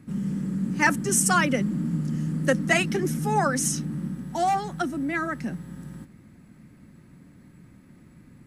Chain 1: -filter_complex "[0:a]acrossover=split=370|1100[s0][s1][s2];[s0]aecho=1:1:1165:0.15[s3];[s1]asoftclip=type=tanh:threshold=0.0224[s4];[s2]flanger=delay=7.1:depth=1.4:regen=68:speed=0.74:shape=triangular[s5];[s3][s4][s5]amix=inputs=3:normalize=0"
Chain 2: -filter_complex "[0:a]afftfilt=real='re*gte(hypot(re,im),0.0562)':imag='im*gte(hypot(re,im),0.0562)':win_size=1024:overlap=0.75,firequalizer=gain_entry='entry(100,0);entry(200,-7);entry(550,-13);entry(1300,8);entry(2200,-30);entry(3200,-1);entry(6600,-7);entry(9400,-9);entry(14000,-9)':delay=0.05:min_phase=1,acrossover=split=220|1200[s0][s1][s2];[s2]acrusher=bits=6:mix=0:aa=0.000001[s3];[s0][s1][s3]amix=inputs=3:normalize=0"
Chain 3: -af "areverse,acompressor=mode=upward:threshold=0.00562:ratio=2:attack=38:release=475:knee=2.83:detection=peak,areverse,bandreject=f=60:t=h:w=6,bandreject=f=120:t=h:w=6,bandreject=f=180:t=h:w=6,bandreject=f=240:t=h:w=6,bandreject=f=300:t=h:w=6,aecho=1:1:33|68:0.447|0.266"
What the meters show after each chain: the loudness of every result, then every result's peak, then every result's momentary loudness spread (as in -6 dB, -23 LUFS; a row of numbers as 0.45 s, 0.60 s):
-27.5 LUFS, -29.0 LUFS, -24.0 LUFS; -13.0 dBFS, -9.0 dBFS, -7.0 dBFS; 10 LU, 15 LU, 13 LU